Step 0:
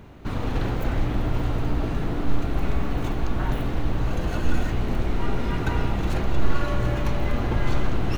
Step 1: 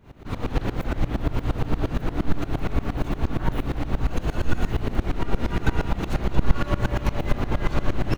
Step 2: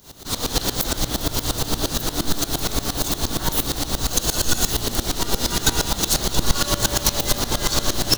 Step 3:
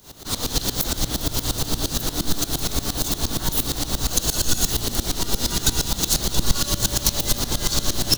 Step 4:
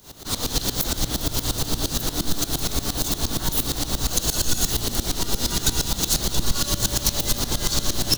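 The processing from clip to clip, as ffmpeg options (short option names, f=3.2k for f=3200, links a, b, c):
-filter_complex "[0:a]asplit=2[a][b];[b]aecho=0:1:1179:0.422[c];[a][c]amix=inputs=2:normalize=0,aeval=exprs='val(0)*pow(10,-20*if(lt(mod(-8.6*n/s,1),2*abs(-8.6)/1000),1-mod(-8.6*n/s,1)/(2*abs(-8.6)/1000),(mod(-8.6*n/s,1)-2*abs(-8.6)/1000)/(1-2*abs(-8.6)/1000))/20)':c=same,volume=5.5dB"
-af "lowshelf=f=270:g=-8,bandreject=f=115.2:t=h:w=4,bandreject=f=230.4:t=h:w=4,bandreject=f=345.6:t=h:w=4,bandreject=f=460.8:t=h:w=4,bandreject=f=576:t=h:w=4,bandreject=f=691.2:t=h:w=4,bandreject=f=806.4:t=h:w=4,bandreject=f=921.6:t=h:w=4,bandreject=f=1.0368k:t=h:w=4,bandreject=f=1.152k:t=h:w=4,bandreject=f=1.2672k:t=h:w=4,bandreject=f=1.3824k:t=h:w=4,bandreject=f=1.4976k:t=h:w=4,bandreject=f=1.6128k:t=h:w=4,bandreject=f=1.728k:t=h:w=4,bandreject=f=1.8432k:t=h:w=4,bandreject=f=1.9584k:t=h:w=4,bandreject=f=2.0736k:t=h:w=4,bandreject=f=2.1888k:t=h:w=4,bandreject=f=2.304k:t=h:w=4,bandreject=f=2.4192k:t=h:w=4,bandreject=f=2.5344k:t=h:w=4,bandreject=f=2.6496k:t=h:w=4,bandreject=f=2.7648k:t=h:w=4,bandreject=f=2.88k:t=h:w=4,bandreject=f=2.9952k:t=h:w=4,bandreject=f=3.1104k:t=h:w=4,bandreject=f=3.2256k:t=h:w=4,bandreject=f=3.3408k:t=h:w=4,bandreject=f=3.456k:t=h:w=4,bandreject=f=3.5712k:t=h:w=4,bandreject=f=3.6864k:t=h:w=4,bandreject=f=3.8016k:t=h:w=4,bandreject=f=3.9168k:t=h:w=4,bandreject=f=4.032k:t=h:w=4,bandreject=f=4.1472k:t=h:w=4,bandreject=f=4.2624k:t=h:w=4,aexciter=amount=13.4:drive=3.1:freq=3.6k,volume=5dB"
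-filter_complex "[0:a]acrossover=split=300|3000[a][b][c];[b]acompressor=threshold=-31dB:ratio=6[d];[a][d][c]amix=inputs=3:normalize=0"
-af "asoftclip=type=tanh:threshold=-8.5dB"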